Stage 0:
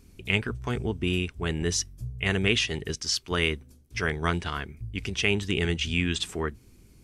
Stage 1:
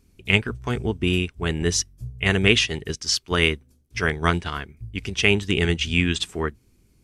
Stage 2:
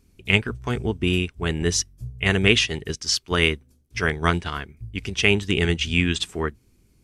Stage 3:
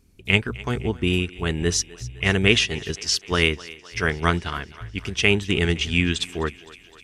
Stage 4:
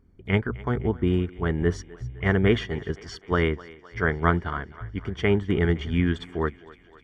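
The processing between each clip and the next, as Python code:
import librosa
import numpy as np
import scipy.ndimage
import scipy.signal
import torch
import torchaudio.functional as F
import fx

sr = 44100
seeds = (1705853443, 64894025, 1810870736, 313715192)

y1 = fx.upward_expand(x, sr, threshold_db=-46.0, expansion=1.5)
y1 = y1 * 10.0 ** (7.5 / 20.0)
y2 = y1
y3 = fx.echo_thinned(y2, sr, ms=257, feedback_pct=66, hz=320.0, wet_db=-19)
y4 = scipy.signal.savgol_filter(y3, 41, 4, mode='constant')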